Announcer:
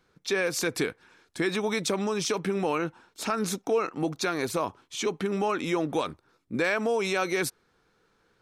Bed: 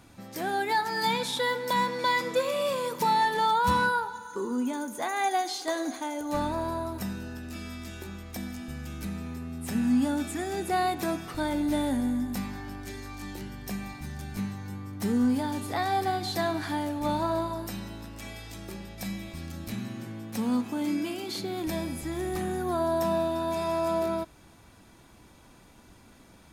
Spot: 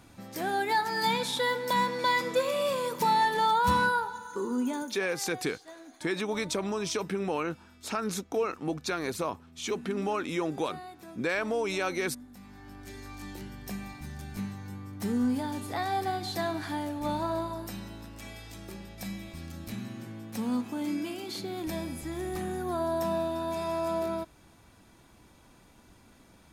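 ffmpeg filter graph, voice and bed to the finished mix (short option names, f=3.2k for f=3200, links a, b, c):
-filter_complex "[0:a]adelay=4650,volume=-3.5dB[a];[1:a]volume=14.5dB,afade=t=out:st=4.78:d=0.24:silence=0.133352,afade=t=in:st=12.39:d=0.71:silence=0.177828[b];[a][b]amix=inputs=2:normalize=0"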